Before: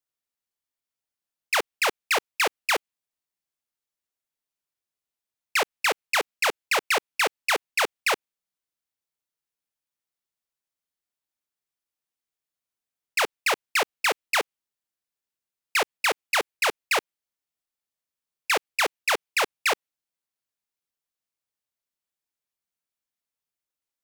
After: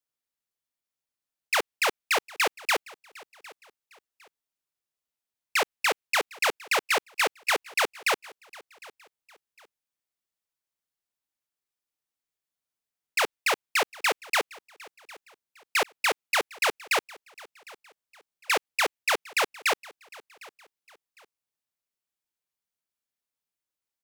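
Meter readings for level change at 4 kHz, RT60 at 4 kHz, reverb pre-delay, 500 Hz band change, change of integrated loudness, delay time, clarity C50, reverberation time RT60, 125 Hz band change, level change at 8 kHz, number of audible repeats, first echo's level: -1.5 dB, no reverb, no reverb, -1.5 dB, -1.5 dB, 756 ms, no reverb, no reverb, no reading, -1.5 dB, 2, -22.0 dB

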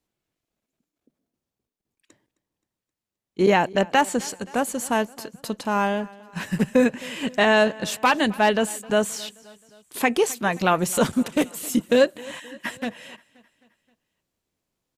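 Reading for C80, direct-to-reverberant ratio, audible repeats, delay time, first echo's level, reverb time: no reverb, no reverb, 3, 263 ms, -22.0 dB, no reverb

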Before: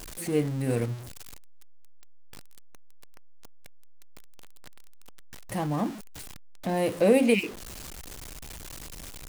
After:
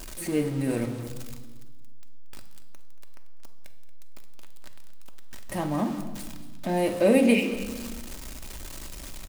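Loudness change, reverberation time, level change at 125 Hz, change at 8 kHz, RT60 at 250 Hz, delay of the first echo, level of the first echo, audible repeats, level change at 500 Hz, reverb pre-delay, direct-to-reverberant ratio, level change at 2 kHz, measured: +1.0 dB, 1.4 s, -1.5 dB, +1.0 dB, 1.9 s, 230 ms, -15.5 dB, 2, +0.5 dB, 3 ms, 4.5 dB, +1.5 dB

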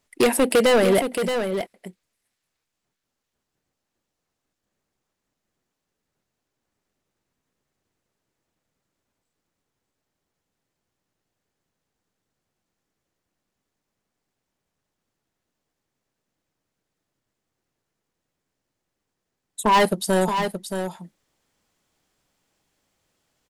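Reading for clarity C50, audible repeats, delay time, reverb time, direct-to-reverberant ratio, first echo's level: no reverb, 1, 624 ms, no reverb, no reverb, -7.5 dB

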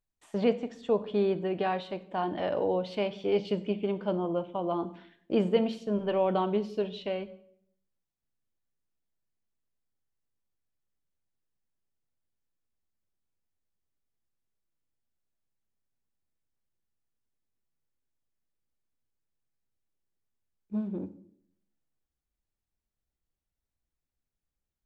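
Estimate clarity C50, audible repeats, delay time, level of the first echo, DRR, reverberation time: 16.0 dB, no echo, no echo, no echo, 11.5 dB, 0.65 s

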